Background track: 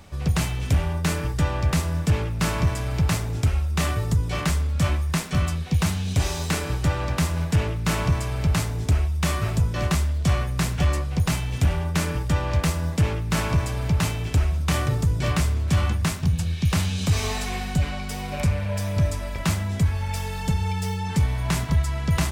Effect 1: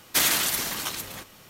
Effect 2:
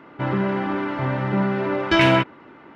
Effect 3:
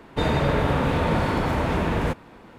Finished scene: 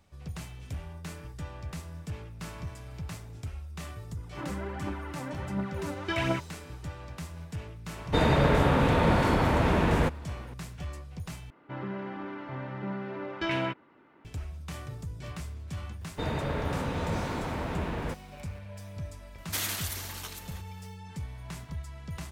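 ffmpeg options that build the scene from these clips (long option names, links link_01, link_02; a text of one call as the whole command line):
ffmpeg -i bed.wav -i cue0.wav -i cue1.wav -i cue2.wav -filter_complex "[2:a]asplit=2[link_01][link_02];[3:a]asplit=2[link_03][link_04];[0:a]volume=-17dB[link_05];[link_01]aphaser=in_gain=1:out_gain=1:delay=4.2:decay=0.54:speed=1.4:type=triangular[link_06];[link_04]aeval=exprs='val(0)*gte(abs(val(0)),0.00596)':channel_layout=same[link_07];[link_05]asplit=2[link_08][link_09];[link_08]atrim=end=11.504[link_10];[link_02]atrim=end=2.75,asetpts=PTS-STARTPTS,volume=-14dB[link_11];[link_09]atrim=start=14.246[link_12];[link_06]atrim=end=2.75,asetpts=PTS-STARTPTS,volume=-15dB,afade=type=in:duration=0.004:curve=hsin,afade=type=out:start_time=2.746:duration=0.004:curve=hsin,adelay=183897S[link_13];[link_03]atrim=end=2.58,asetpts=PTS-STARTPTS,volume=-1dB,afade=type=in:duration=0.004:curve=hsin,afade=type=out:start_time=2.576:duration=0.004:curve=hsin,adelay=7960[link_14];[link_07]atrim=end=2.58,asetpts=PTS-STARTPTS,volume=-10dB,afade=type=in:duration=0.004:curve=hsin,afade=type=out:start_time=2.576:duration=0.004:curve=hsin,adelay=16010[link_15];[1:a]atrim=end=1.49,asetpts=PTS-STARTPTS,volume=-10.5dB,afade=type=in:duration=0.004:curve=hsin,afade=type=out:start_time=1.486:duration=0.004:curve=hsin,adelay=19380[link_16];[link_10][link_11]acrossfade=duration=0.004:curve1=hsin:curve2=hsin[link_17];[link_17][link_12]acrossfade=duration=0.004:curve1=hsin:curve2=hsin[link_18];[link_18][link_13][link_14][link_15][link_16]amix=inputs=5:normalize=0" out.wav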